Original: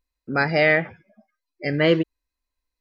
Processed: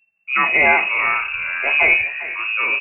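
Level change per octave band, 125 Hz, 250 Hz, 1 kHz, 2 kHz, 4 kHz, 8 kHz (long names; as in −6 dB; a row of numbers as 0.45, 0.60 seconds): below −15 dB, −10.5 dB, +9.0 dB, +10.0 dB, +2.5 dB, can't be measured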